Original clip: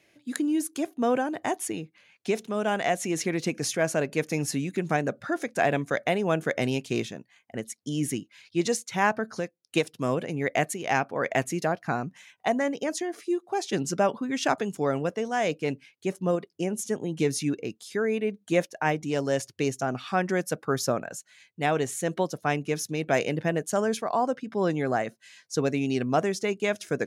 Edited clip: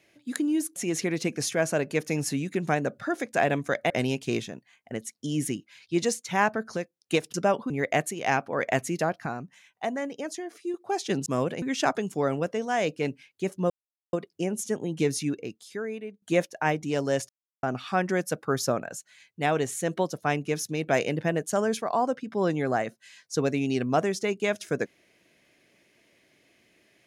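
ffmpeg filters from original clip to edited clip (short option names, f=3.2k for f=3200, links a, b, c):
-filter_complex "[0:a]asplit=13[a][b][c][d][e][f][g][h][i][j][k][l][m];[a]atrim=end=0.762[n];[b]atrim=start=2.978:end=6.122[o];[c]atrim=start=6.528:end=9.972[p];[d]atrim=start=13.888:end=14.252[q];[e]atrim=start=10.328:end=11.892[r];[f]atrim=start=11.888:end=13.372,asetpts=PTS-STARTPTS,volume=-5dB[s];[g]atrim=start=13.368:end=13.892[t];[h]atrim=start=9.968:end=10.332[u];[i]atrim=start=14.248:end=16.33,asetpts=PTS-STARTPTS,afade=t=out:st=2.078:d=0.004:c=hsin,apad=pad_dur=0.43[v];[j]atrim=start=16.33:end=18.42,asetpts=PTS-STARTPTS,afade=t=in:d=0.004:c=hsin,afade=t=out:st=0.95:d=1.14:silence=0.188365[w];[k]atrim=start=18.42:end=19.49,asetpts=PTS-STARTPTS,afade=t=in:d=0.004:c=hsin:silence=0.188365,afade=t=out:st=1.066:d=0.004:c=hsin[x];[l]atrim=start=19.49:end=19.83,asetpts=PTS-STARTPTS,volume=0[y];[m]atrim=start=19.83,asetpts=PTS-STARTPTS,afade=t=in:d=0.004:c=hsin[z];[n][o]acrossfade=d=0.004:c1=hsin:c2=hsin[aa];[aa][p]acrossfade=d=0.004:c1=hsin:c2=hsin[ab];[ab][q]acrossfade=d=0.004:c1=hsin:c2=hsin[ac];[ac][r]acrossfade=d=0.004:c1=hsin:c2=hsin[ad];[ad][s]acrossfade=d=0.004:c1=hsin:c2=hsin[ae];[ae][t]acrossfade=d=0.004:c1=hsin:c2=hsin[af];[af][u]acrossfade=d=0.004:c1=hsin:c2=hsin[ag];[v][w][x][y][z]concat=n=5:v=0:a=1[ah];[ag][ah]acrossfade=d=0.004:c1=hsin:c2=hsin"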